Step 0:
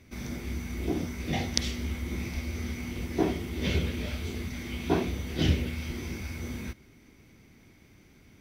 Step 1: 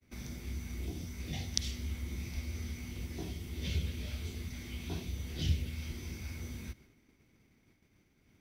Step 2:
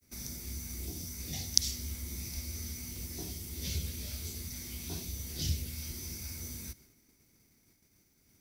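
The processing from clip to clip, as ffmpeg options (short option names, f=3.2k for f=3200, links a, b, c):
-filter_complex "[0:a]acrossover=split=150|3000[a][b][c];[b]acompressor=threshold=-46dB:ratio=3[d];[a][d][c]amix=inputs=3:normalize=0,agate=range=-33dB:threshold=-49dB:ratio=3:detection=peak,volume=-4dB"
-af "aexciter=amount=4.2:drive=6.5:freq=4.4k,volume=-2.5dB"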